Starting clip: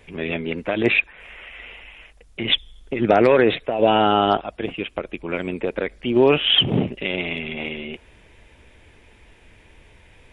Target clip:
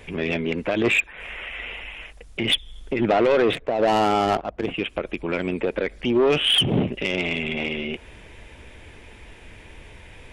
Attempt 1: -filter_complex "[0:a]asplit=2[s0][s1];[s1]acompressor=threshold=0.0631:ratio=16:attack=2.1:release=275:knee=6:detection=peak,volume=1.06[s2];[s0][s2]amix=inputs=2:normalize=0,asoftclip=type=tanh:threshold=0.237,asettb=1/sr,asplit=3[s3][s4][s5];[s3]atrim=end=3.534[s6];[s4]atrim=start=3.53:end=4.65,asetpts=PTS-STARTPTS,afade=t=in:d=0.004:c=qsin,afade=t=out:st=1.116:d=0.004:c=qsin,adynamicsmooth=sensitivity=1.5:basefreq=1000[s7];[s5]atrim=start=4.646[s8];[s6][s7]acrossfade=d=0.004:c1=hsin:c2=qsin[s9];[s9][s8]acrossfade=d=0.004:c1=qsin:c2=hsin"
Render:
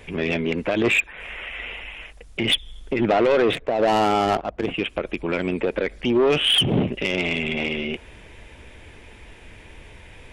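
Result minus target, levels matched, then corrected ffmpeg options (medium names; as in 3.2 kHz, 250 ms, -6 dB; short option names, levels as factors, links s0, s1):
compression: peak gain reduction -6 dB
-filter_complex "[0:a]asplit=2[s0][s1];[s1]acompressor=threshold=0.0299:ratio=16:attack=2.1:release=275:knee=6:detection=peak,volume=1.06[s2];[s0][s2]amix=inputs=2:normalize=0,asoftclip=type=tanh:threshold=0.237,asettb=1/sr,asplit=3[s3][s4][s5];[s3]atrim=end=3.534[s6];[s4]atrim=start=3.53:end=4.65,asetpts=PTS-STARTPTS,afade=t=in:d=0.004:c=qsin,afade=t=out:st=1.116:d=0.004:c=qsin,adynamicsmooth=sensitivity=1.5:basefreq=1000[s7];[s5]atrim=start=4.646[s8];[s6][s7]acrossfade=d=0.004:c1=hsin:c2=qsin[s9];[s9][s8]acrossfade=d=0.004:c1=qsin:c2=hsin"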